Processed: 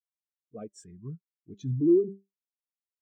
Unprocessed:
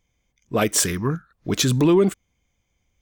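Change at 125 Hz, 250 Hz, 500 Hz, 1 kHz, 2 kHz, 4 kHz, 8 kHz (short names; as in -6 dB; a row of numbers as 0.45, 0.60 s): -11.0 dB, -7.0 dB, -7.0 dB, under -25 dB, under -35 dB, under -30 dB, under -30 dB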